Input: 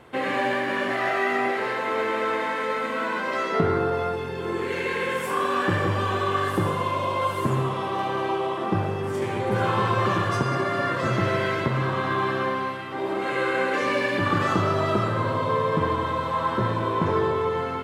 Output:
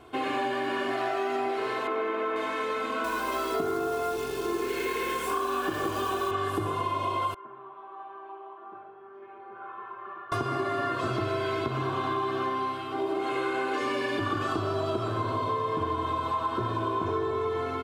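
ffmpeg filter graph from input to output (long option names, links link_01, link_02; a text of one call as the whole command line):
ffmpeg -i in.wav -filter_complex "[0:a]asettb=1/sr,asplit=3[link_01][link_02][link_03];[link_01]atrim=end=1.874[link_04];[link_02]atrim=start=1.87:end=2.36,asetpts=PTS-STARTPTS,afade=type=in:duration=0.004:curve=qsin,afade=type=out:start_time=0.486:duration=0.004:curve=qsin,acrossover=split=2900[link_05][link_06];[link_06]acompressor=threshold=-58dB:ratio=4:attack=1:release=60[link_07];[link_05][link_07]amix=inputs=2:normalize=0,highpass=180[link_08];[link_03]atrim=start=2.356[link_09];[link_04][link_08]acrossfade=duration=0.004:curve1=hsin:curve2=qsin[link_10];[link_10][link_09]acrossfade=duration=0.004:curve1=qsin:curve2=hsin,asettb=1/sr,asplit=3[link_11][link_12][link_13];[link_11]atrim=end=3.044[link_14];[link_12]atrim=start=3.04:end=6.31,asetpts=PTS-STARTPTS,afade=type=in:duration=0.004:curve=qsin,afade=type=out:start_time=3.266:duration=0.004:curve=qsin,highpass=frequency=140:width=0.5412,highpass=frequency=140:width=1.3066,acrusher=bits=7:dc=4:mix=0:aa=0.000001,aeval=exprs='val(0)+0.00282*(sin(2*PI*60*n/s)+sin(2*PI*2*60*n/s)/2+sin(2*PI*3*60*n/s)/3+sin(2*PI*4*60*n/s)/4+sin(2*PI*5*60*n/s)/5)':channel_layout=same[link_15];[link_13]atrim=start=6.306[link_16];[link_14][link_15]acrossfade=duration=0.004:curve1=hsin:curve2=qsin[link_17];[link_17][link_16]acrossfade=duration=0.004:curve1=qsin:curve2=hsin,asettb=1/sr,asplit=3[link_18][link_19][link_20];[link_18]atrim=end=7.344[link_21];[link_19]atrim=start=7.34:end=10.32,asetpts=PTS-STARTPTS,afade=type=in:duration=0.004:curve=qsin,afade=type=out:start_time=2.976:duration=0.004:curve=qsin,lowpass=frequency=1600:width=0.5412,lowpass=frequency=1600:width=1.3066,aderivative,aecho=1:1:5.1:0.58,atrim=end_sample=131418[link_22];[link_20]atrim=start=10.316[link_23];[link_21][link_22]acrossfade=duration=0.004:curve1=hsin:curve2=qsin[link_24];[link_24][link_23]acrossfade=duration=0.004:curve1=qsin:curve2=hsin,equalizer=frequency=1900:width=6.3:gain=-10.5,aecho=1:1:2.8:0.7,acompressor=threshold=-23dB:ratio=6,volume=-2.5dB" out.wav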